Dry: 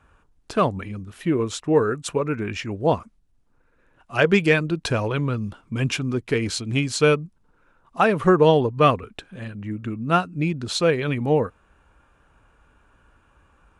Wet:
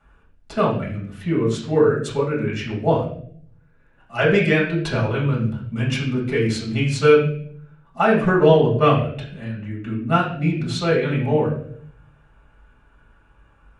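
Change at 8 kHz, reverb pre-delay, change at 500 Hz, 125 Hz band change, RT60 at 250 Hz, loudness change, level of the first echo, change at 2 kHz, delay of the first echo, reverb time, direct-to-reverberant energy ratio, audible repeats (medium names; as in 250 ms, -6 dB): -5.0 dB, 4 ms, +2.5 dB, +4.0 dB, 0.90 s, +2.0 dB, no echo, +1.5 dB, no echo, 0.60 s, -5.5 dB, no echo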